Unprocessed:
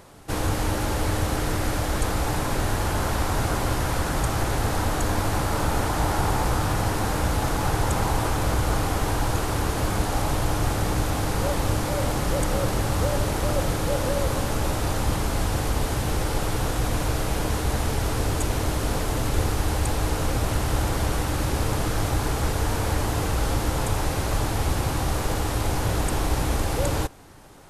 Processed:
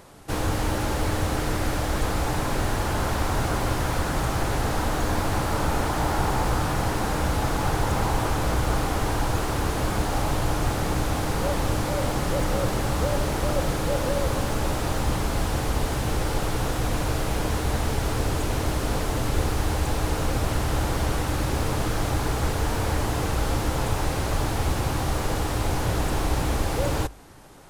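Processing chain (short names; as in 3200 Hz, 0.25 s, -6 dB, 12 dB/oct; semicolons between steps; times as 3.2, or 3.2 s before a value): notches 50/100 Hz; slew limiter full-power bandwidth 120 Hz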